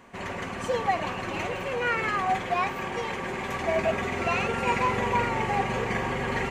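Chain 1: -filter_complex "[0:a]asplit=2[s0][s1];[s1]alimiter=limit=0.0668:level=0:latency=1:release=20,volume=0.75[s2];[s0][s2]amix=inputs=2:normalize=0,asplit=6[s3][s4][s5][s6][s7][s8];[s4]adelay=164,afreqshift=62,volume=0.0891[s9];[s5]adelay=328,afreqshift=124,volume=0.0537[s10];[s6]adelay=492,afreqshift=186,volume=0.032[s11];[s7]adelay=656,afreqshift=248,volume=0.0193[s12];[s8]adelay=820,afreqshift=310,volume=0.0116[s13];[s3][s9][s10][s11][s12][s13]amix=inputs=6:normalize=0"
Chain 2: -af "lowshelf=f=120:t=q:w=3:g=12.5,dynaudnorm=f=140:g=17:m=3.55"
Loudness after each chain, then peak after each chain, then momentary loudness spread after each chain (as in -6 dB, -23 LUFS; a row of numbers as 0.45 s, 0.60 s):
-24.5 LUFS, -18.5 LUFS; -11.0 dBFS, -2.0 dBFS; 5 LU, 9 LU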